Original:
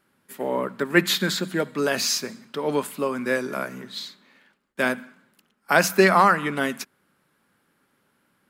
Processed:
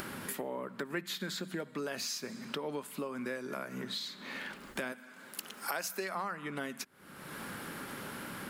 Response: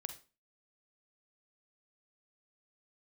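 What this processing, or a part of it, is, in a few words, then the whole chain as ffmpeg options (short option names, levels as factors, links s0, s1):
upward and downward compression: -filter_complex "[0:a]acompressor=mode=upward:threshold=0.0891:ratio=2.5,acompressor=threshold=0.0126:ratio=4,asettb=1/sr,asplit=3[s0][s1][s2];[s0]atrim=end=4.924[s3];[s1]atrim=start=4.92:end=6.15,asetpts=PTS-STARTPTS,afade=t=in:d=0.004:c=qsin,afade=t=out:st=1.226:d=0.004:c=qsin,bass=f=250:g=-11,treble=f=4000:g=6[s4];[s2]atrim=start=6.146[s5];[s3][s4]acrossfade=d=0.004:c1=hsin:c2=qsin[s6];[s6][s5]acrossfade=d=0.004:c1=qsin:c2=hsin"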